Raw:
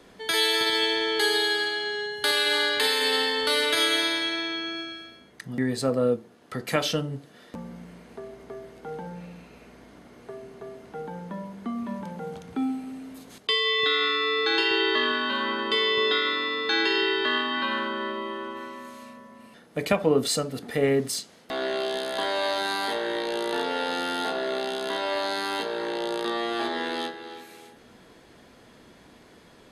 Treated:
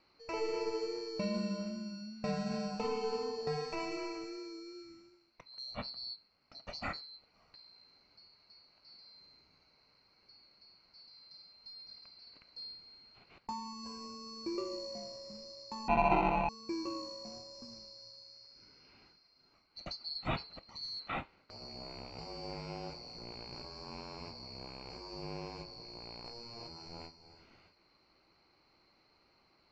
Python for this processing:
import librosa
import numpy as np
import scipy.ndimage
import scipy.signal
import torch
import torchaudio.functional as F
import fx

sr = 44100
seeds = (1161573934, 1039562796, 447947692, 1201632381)

y = fx.band_swap(x, sr, width_hz=4000)
y = fx.sample_hold(y, sr, seeds[0], rate_hz=1700.0, jitter_pct=0, at=(15.88, 16.49))
y = scipy.signal.sosfilt(scipy.signal.butter(4, 2700.0, 'lowpass', fs=sr, output='sos'), y)
y = y * 10.0 ** (-4.0 / 20.0)